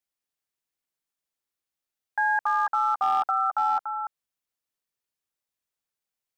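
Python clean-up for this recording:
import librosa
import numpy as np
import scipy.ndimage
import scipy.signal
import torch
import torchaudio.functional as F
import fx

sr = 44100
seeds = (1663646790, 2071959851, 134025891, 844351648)

y = fx.fix_declip(x, sr, threshold_db=-17.5)
y = fx.fix_echo_inverse(y, sr, delay_ms=289, level_db=-7.5)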